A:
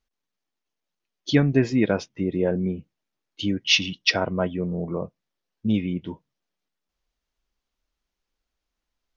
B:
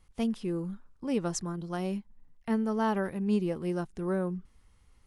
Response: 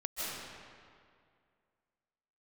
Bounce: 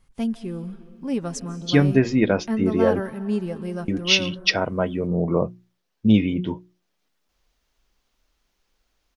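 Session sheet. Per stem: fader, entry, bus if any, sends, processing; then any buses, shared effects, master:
-3.0 dB, 0.40 s, muted 3–3.88, no send, AGC gain up to 14.5 dB; notches 60/120/180/240/300/360 Hz
0.0 dB, 0.00 s, send -17 dB, comb 7.4 ms, depth 40%; small resonant body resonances 210/1600 Hz, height 6 dB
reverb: on, RT60 2.2 s, pre-delay 0.115 s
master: dry

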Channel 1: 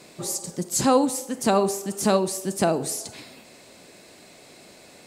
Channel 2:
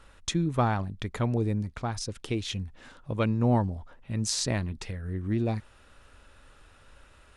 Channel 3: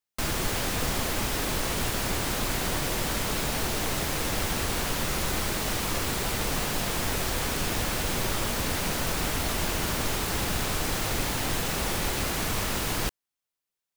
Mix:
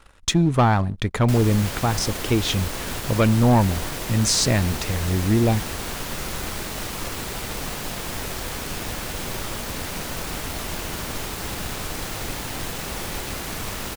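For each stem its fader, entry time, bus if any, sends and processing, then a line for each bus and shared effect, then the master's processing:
off
+2.5 dB, 0.00 s, no send, dry
-9.0 dB, 1.10 s, no send, dry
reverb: off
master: sample leveller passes 2

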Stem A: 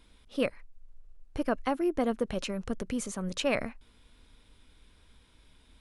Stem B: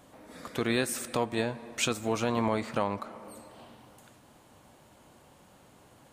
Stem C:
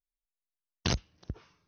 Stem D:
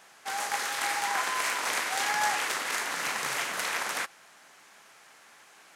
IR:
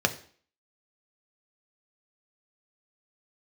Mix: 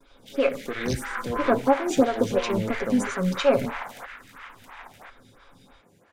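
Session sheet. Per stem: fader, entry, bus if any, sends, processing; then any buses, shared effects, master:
-1.0 dB, 0.00 s, send -6 dB, no echo send, LPF 9300 Hz; comb 7.3 ms, depth 67%
-10.5 dB, 0.10 s, send -4 dB, no echo send, dry
-1.0 dB, 0.00 s, no send, no echo send, dry
-6.0 dB, 0.00 s, send -21.5 dB, echo send -8 dB, band shelf 7100 Hz -10.5 dB; LFO high-pass saw down 0.49 Hz 590–4000 Hz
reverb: on, RT60 0.50 s, pre-delay 3 ms
echo: echo 1.046 s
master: gate with hold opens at -48 dBFS; tone controls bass +3 dB, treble +2 dB; photocell phaser 3 Hz

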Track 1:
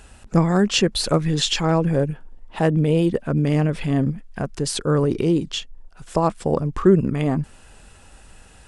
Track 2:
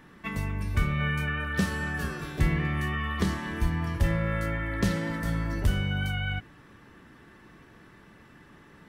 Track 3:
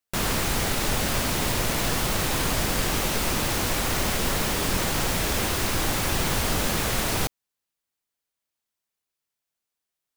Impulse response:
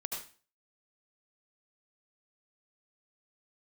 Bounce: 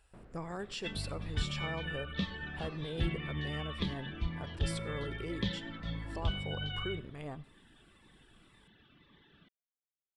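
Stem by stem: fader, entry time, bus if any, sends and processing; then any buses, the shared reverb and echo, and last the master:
-12.0 dB, 0.00 s, bus A, send -22 dB, bell 220 Hz -12 dB 1.1 oct; notch 6400 Hz, Q 5; upward expander 1.5:1, over -34 dBFS
+3.0 dB, 0.60 s, no bus, send -17 dB, reverb removal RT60 0.83 s; ladder low-pass 3700 Hz, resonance 75%; cascading phaser falling 1.9 Hz
-14.5 dB, 0.00 s, bus A, no send, LPF 1200 Hz 12 dB/oct; rotary speaker horn 0.6 Hz; auto duck -12 dB, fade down 0.30 s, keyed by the first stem
bus A: 0.0 dB, limiter -33 dBFS, peak gain reduction 11.5 dB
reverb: on, RT60 0.35 s, pre-delay 67 ms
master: dry

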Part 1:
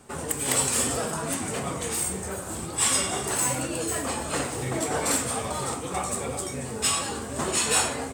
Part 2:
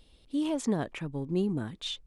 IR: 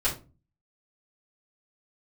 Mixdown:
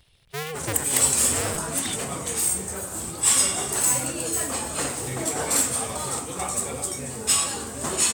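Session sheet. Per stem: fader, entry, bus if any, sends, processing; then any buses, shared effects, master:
-1.5 dB, 0.45 s, no send, dry
-3.5 dB, 0.00 s, no send, cycle switcher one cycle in 2, inverted; ten-band EQ 125 Hz +4 dB, 250 Hz -9 dB, 2000 Hz +8 dB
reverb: off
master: high shelf 5400 Hz +9 dB

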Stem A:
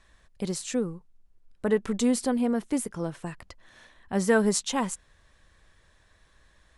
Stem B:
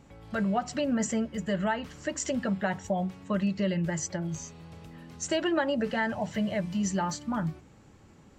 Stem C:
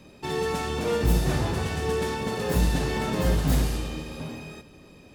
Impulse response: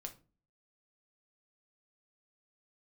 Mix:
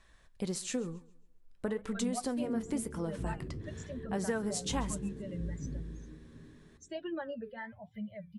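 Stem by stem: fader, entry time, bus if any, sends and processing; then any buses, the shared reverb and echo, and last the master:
+1.5 dB, 0.00 s, no send, echo send -21.5 dB, compressor 6:1, threshold -28 dBFS, peak gain reduction 11.5 dB
-4.5 dB, 1.60 s, no send, no echo send, per-bin expansion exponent 2; high shelf 3000 Hz -10.5 dB
-11.0 dB, 2.15 s, no send, no echo send, inverse Chebyshev low-pass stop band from 850 Hz, stop band 40 dB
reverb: off
echo: feedback echo 0.136 s, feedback 32%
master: flange 1 Hz, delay 4.7 ms, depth 6.2 ms, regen -74%

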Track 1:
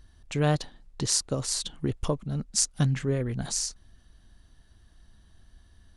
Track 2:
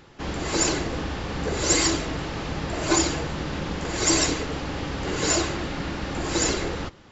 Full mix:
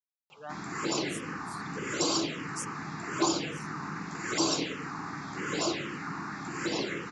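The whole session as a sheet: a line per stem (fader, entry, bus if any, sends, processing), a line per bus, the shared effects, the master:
-7.0 dB, 0.00 s, no send, per-bin expansion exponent 3; HPF 460 Hz
-5.0 dB, 0.30 s, no send, HPF 140 Hz 24 dB/oct; LFO bell 1.7 Hz 960–3200 Hz +6 dB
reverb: off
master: bell 1200 Hz +3.5 dB 0.33 oct; envelope phaser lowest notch 280 Hz, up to 1900 Hz, full sweep at -22 dBFS

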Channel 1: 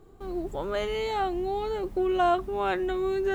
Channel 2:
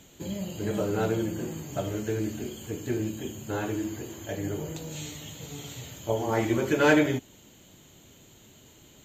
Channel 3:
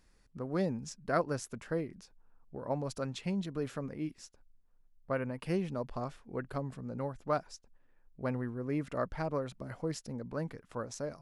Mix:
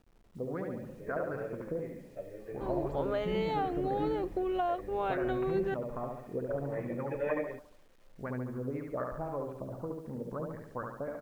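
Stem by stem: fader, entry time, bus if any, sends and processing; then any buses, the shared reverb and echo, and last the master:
-3.5 dB, 2.40 s, no send, no echo send, LPF 4000 Hz 12 dB/oct; bell 650 Hz +5.5 dB; compressor, threshold -26 dBFS, peak gain reduction 10.5 dB
-2.5 dB, 0.40 s, no send, no echo send, vocal tract filter e
-0.5 dB, 0.00 s, no send, echo send -3.5 dB, low-pass opened by the level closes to 330 Hz, open at -29 dBFS; compressor 12:1, threshold -36 dBFS, peak gain reduction 12.5 dB; LFO low-pass sine 3.9 Hz 420–1900 Hz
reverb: off
echo: feedback echo 71 ms, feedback 51%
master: bit-crush 11-bit

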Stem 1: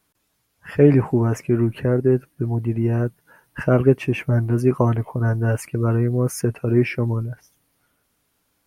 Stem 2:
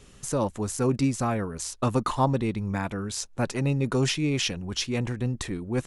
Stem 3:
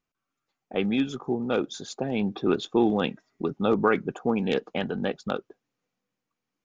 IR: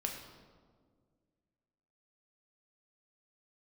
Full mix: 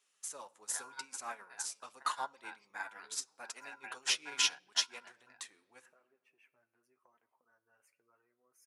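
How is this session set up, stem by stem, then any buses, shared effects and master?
-11.5 dB, 2.25 s, send -12 dB, compressor 10:1, threshold -19 dBFS, peak gain reduction 12 dB
+2.5 dB, 0.00 s, send -7 dB, high shelf 7300 Hz +5 dB; limiter -19 dBFS, peak gain reduction 8 dB
-5.0 dB, 0.00 s, no send, ring modulator 1200 Hz; three-band squash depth 40%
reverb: on, RT60 1.8 s, pre-delay 3 ms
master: HPF 960 Hz 12 dB/oct; flange 0.82 Hz, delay 2.8 ms, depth 7 ms, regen -43%; upward expander 2.5:1, over -40 dBFS

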